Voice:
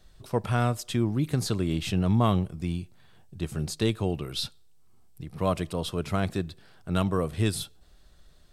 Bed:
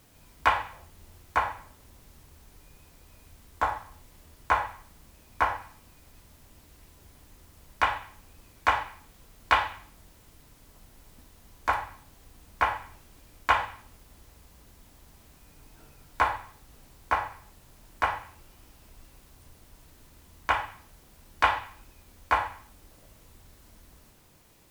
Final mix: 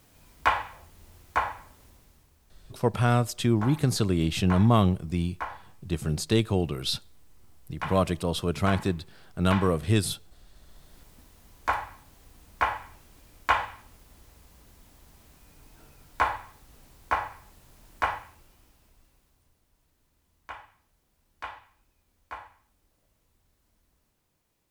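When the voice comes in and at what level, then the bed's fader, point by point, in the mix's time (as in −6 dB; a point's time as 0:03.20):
2.50 s, +2.5 dB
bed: 0:01.84 −0.5 dB
0:02.36 −9.5 dB
0:10.45 −9.5 dB
0:10.99 −0.5 dB
0:18.10 −0.5 dB
0:19.62 −16 dB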